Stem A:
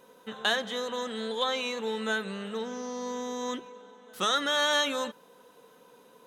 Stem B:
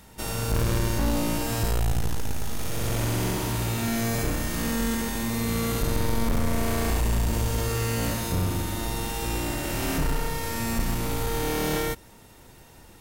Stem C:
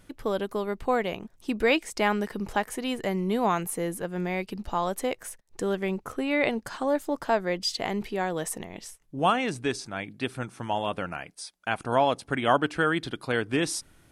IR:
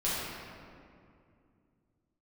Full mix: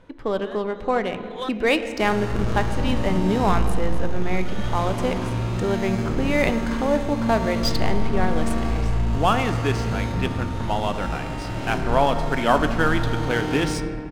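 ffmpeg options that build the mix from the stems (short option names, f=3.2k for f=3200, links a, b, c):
-filter_complex "[0:a]acrossover=split=3300[a][b];[b]acompressor=threshold=-37dB:ratio=4:attack=1:release=60[c];[a][c]amix=inputs=2:normalize=0,volume=0dB[d];[1:a]adelay=1800,volume=-6.5dB,asplit=2[e][f];[f]volume=-5.5dB[g];[2:a]volume=2dB,asplit=3[h][i][j];[i]volume=-16dB[k];[j]apad=whole_len=276239[l];[d][l]sidechaincompress=threshold=-42dB:ratio=8:attack=16:release=225[m];[3:a]atrim=start_sample=2205[n];[g][k]amix=inputs=2:normalize=0[o];[o][n]afir=irnorm=-1:irlink=0[p];[m][e][h][p]amix=inputs=4:normalize=0,adynamicsmooth=sensitivity=3.5:basefreq=3.3k"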